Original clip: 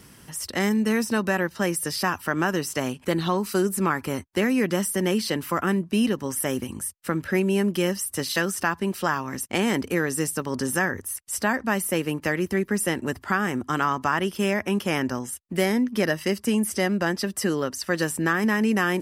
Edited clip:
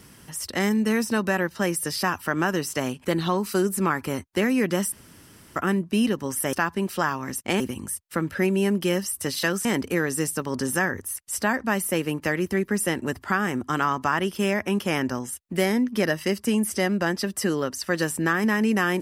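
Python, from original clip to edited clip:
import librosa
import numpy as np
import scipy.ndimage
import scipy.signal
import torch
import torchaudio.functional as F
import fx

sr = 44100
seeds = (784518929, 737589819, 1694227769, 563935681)

y = fx.edit(x, sr, fx.room_tone_fill(start_s=4.92, length_s=0.64),
    fx.move(start_s=8.58, length_s=1.07, to_s=6.53), tone=tone)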